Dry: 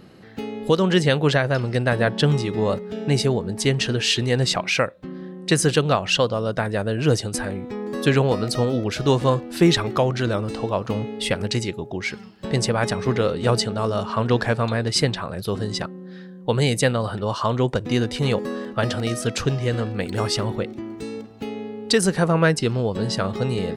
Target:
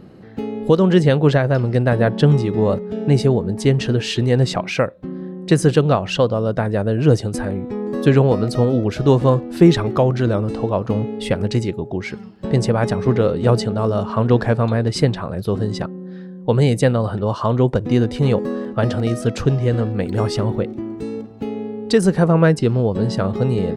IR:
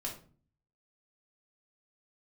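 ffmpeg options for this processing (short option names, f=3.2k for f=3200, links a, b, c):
-af "tiltshelf=f=1.2k:g=6"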